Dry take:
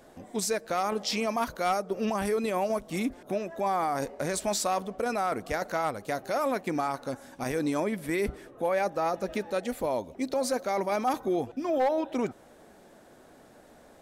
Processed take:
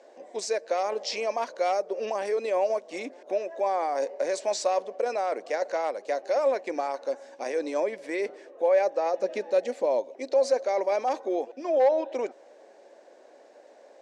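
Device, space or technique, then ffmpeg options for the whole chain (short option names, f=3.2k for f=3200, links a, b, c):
phone speaker on a table: -filter_complex "[0:a]asettb=1/sr,asplit=3[a][b][c];[a]atrim=end=9.194[d];[b]atrim=start=9.19:end=10,asetpts=PTS-STARTPTS,afade=t=in:d=0.004:c=qsin,afade=t=out:st=0.806:d=0.004:c=qsin,bass=f=250:g=11,treble=f=4k:g=1[e];[c]atrim=start=9.996[f];[d][e]acrossfade=d=0.004:c1=hsin:c2=qsin[g];[g][f]acrossfade=d=0.004:c1=qsin:c2=hsin,highpass=f=350:w=0.5412,highpass=f=350:w=1.3066,equalizer=f=550:t=q:w=4:g=8,equalizer=f=1.3k:t=q:w=4:g=-9,equalizer=f=3.4k:t=q:w=4:g=-5,lowpass=f=6.8k:w=0.5412,lowpass=f=6.8k:w=1.3066"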